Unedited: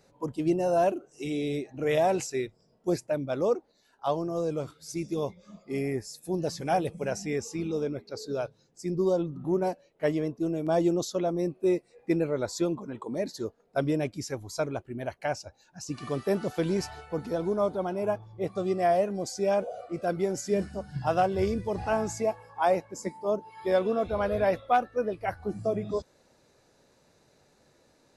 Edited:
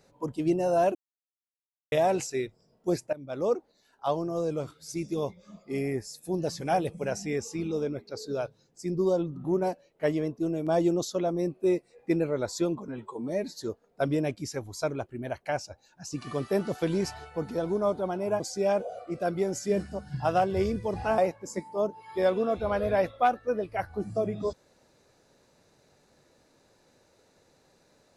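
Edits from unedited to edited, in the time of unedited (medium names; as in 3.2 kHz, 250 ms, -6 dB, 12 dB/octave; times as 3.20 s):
0.95–1.92 s: mute
3.13–3.53 s: fade in, from -18.5 dB
12.88–13.36 s: stretch 1.5×
18.16–19.22 s: delete
22.00–22.67 s: delete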